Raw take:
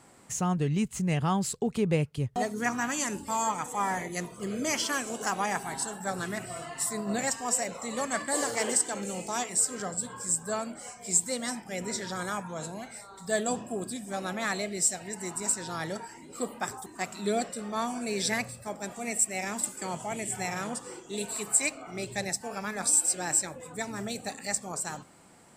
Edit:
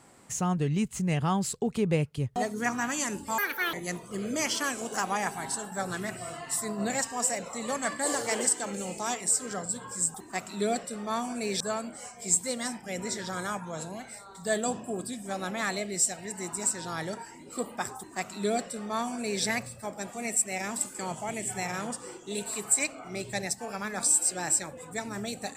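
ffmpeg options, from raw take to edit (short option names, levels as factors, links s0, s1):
-filter_complex "[0:a]asplit=5[s0][s1][s2][s3][s4];[s0]atrim=end=3.384[s5];[s1]atrim=start=3.38:end=4.02,asetpts=PTS-STARTPTS,asetrate=79821,aresample=44100,atrim=end_sample=15593,asetpts=PTS-STARTPTS[s6];[s2]atrim=start=4.016:end=10.432[s7];[s3]atrim=start=16.798:end=18.262[s8];[s4]atrim=start=10.428[s9];[s5][s6]acrossfade=d=0.004:c1=hsin:c2=hsin[s10];[s10][s7]acrossfade=d=0.004:c1=hsin:c2=hsin[s11];[s11][s8]acrossfade=d=0.004:c1=hsin:c2=hsin[s12];[s12][s9]acrossfade=d=0.004:c1=hsin:c2=hsin"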